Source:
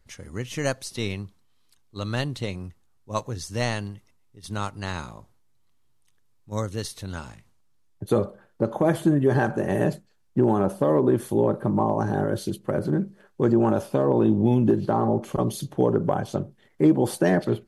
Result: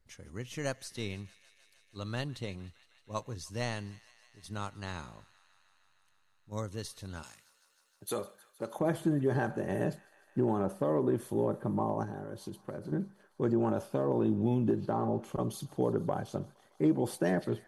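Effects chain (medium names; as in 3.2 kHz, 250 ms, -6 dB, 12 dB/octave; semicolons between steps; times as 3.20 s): 7.23–8.79 s: tilt EQ +4 dB/octave; 12.03–12.92 s: compression, threshold -28 dBFS, peak gain reduction 9 dB; feedback echo behind a high-pass 155 ms, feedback 81%, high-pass 1.4 kHz, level -19.5 dB; trim -9 dB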